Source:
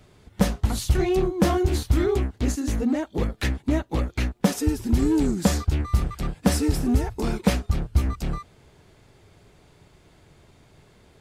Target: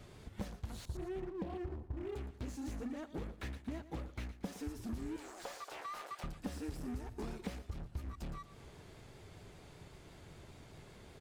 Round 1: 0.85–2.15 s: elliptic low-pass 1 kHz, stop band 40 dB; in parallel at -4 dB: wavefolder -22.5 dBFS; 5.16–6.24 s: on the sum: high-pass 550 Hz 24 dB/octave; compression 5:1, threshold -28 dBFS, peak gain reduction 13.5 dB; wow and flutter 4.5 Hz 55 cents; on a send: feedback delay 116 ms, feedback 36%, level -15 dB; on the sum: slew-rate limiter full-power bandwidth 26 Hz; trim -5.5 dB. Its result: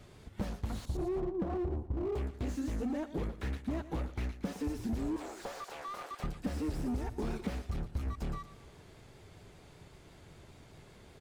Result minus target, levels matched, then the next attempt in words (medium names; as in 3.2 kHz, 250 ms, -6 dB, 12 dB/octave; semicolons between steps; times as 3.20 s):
wavefolder: distortion -23 dB; compression: peak gain reduction -6 dB
0.85–2.15 s: elliptic low-pass 1 kHz, stop band 40 dB; in parallel at -4 dB: wavefolder -30.5 dBFS; 5.16–6.24 s: on the sum: high-pass 550 Hz 24 dB/octave; compression 5:1, threshold -35.5 dBFS, peak gain reduction 19.5 dB; wow and flutter 4.5 Hz 55 cents; on a send: feedback delay 116 ms, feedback 36%, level -15 dB; on the sum: slew-rate limiter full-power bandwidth 26 Hz; trim -5.5 dB